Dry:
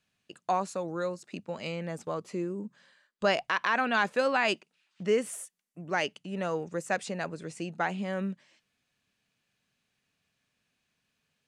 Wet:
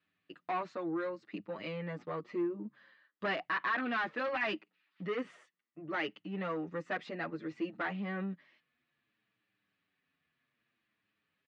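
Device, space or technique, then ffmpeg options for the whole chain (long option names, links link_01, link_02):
barber-pole flanger into a guitar amplifier: -filter_complex "[0:a]asplit=2[link_01][link_02];[link_02]adelay=7.4,afreqshift=-0.62[link_03];[link_01][link_03]amix=inputs=2:normalize=1,asoftclip=type=tanh:threshold=-29.5dB,highpass=80,equalizer=frequency=310:width_type=q:width=4:gain=10,equalizer=frequency=1200:width_type=q:width=4:gain=7,equalizer=frequency=1900:width_type=q:width=4:gain=8,lowpass=frequency=4000:width=0.5412,lowpass=frequency=4000:width=1.3066,volume=-2.5dB"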